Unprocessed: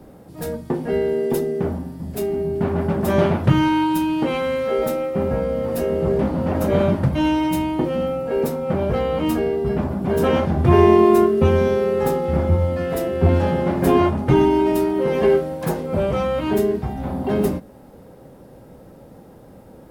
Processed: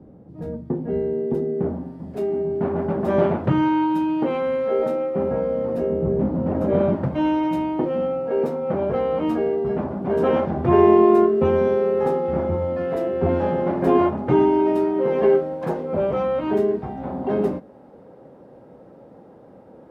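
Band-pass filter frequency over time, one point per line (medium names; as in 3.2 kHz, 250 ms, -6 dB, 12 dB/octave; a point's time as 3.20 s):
band-pass filter, Q 0.51
1.30 s 160 Hz
1.95 s 500 Hz
5.56 s 500 Hz
6.10 s 180 Hz
7.17 s 560 Hz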